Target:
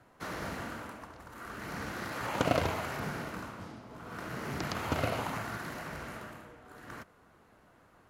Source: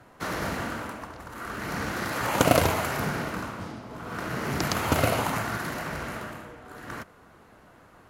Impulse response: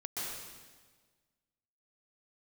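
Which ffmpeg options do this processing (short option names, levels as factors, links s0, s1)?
-filter_complex "[0:a]acrossover=split=5800[s0][s1];[s1]acompressor=threshold=0.00708:ratio=4:attack=1:release=60[s2];[s0][s2]amix=inputs=2:normalize=0,volume=0.398"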